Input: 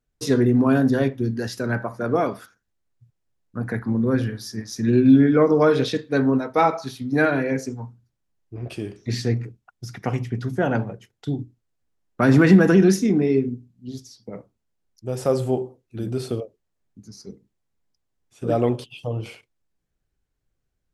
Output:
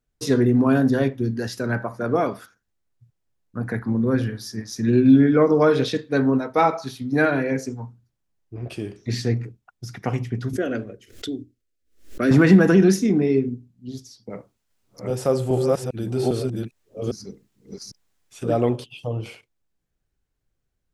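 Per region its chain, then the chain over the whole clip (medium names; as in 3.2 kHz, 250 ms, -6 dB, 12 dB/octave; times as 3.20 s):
10.53–12.31 s: static phaser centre 360 Hz, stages 4 + swell ahead of each attack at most 130 dB/s
14.30–18.63 s: chunks repeated in reverse 402 ms, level 0 dB + tape noise reduction on one side only encoder only
whole clip: none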